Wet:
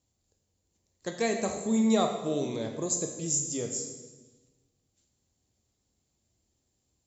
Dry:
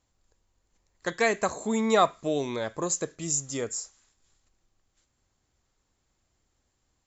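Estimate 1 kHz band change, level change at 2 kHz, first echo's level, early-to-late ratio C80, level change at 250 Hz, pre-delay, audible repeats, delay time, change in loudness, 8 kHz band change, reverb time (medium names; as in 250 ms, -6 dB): -7.0 dB, -9.0 dB, no echo, 8.0 dB, +2.5 dB, 16 ms, no echo, no echo, -1.5 dB, no reading, 1.2 s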